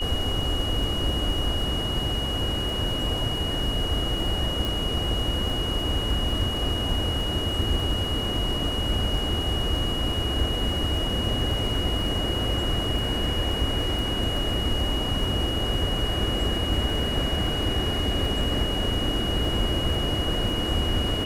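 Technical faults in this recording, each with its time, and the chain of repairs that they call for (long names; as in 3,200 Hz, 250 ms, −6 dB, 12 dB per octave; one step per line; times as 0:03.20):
surface crackle 22 per second −31 dBFS
whistle 2,900 Hz −29 dBFS
0:04.65: click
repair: click removal
notch filter 2,900 Hz, Q 30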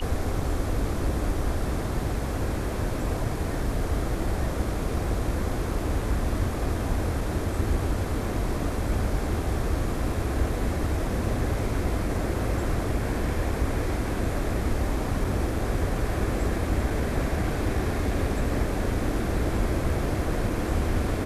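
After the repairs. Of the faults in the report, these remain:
none of them is left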